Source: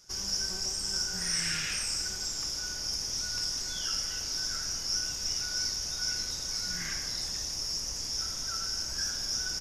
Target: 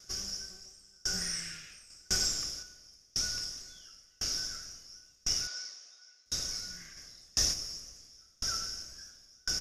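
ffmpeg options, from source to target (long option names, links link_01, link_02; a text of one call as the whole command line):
ffmpeg -i in.wav -filter_complex "[0:a]asettb=1/sr,asplit=3[link_01][link_02][link_03];[link_01]atrim=end=5.474[link_04];[link_02]atrim=start=5.47:end=6.26,asetpts=PTS-STARTPTS,afade=type=in:duration=0.004:curve=qsin,afade=type=out:start_time=0.786:duration=0.004:curve=qsin,highpass=580,lowpass=6000[link_05];[link_03]atrim=start=6.256[link_06];[link_04][link_05]acrossfade=duration=0.004:curve1=hsin:curve2=qsin[link_07];[link_07][link_06]acrossfade=duration=0.004:curve1=qsin:curve2=hsin,asplit=3[link_08][link_09][link_10];[link_08]afade=type=out:start_time=6.96:duration=0.02[link_11];[link_09]acontrast=53,afade=type=in:start_time=6.96:duration=0.02,afade=type=out:start_time=7.52:duration=0.02[link_12];[link_10]afade=type=in:start_time=7.52:duration=0.02[link_13];[link_11][link_12][link_13]amix=inputs=3:normalize=0,asuperstop=centerf=910:order=4:qfactor=3.7,asettb=1/sr,asplit=3[link_14][link_15][link_16];[link_14]atrim=end=1.904[link_17];[link_15]atrim=start=1.9:end=2.63,asetpts=PTS-STARTPTS,afade=type=in:duration=0.004:curve=qsin,afade=type=out:start_time=0.726:duration=0.004:curve=qsin,acontrast=35[link_18];[link_16]atrim=start=2.626[link_19];[link_17][link_18]acrossfade=duration=0.004:curve1=hsin:curve2=qsin[link_20];[link_20][link_19]acrossfade=duration=0.004:curve1=qsin:curve2=hsin,aeval=exprs='val(0)*pow(10,-36*if(lt(mod(0.95*n/s,1),2*abs(0.95)/1000),1-mod(0.95*n/s,1)/(2*abs(0.95)/1000),(mod(0.95*n/s,1)-2*abs(0.95)/1000)/(1-2*abs(0.95)/1000))/20)':channel_layout=same,volume=4dB" out.wav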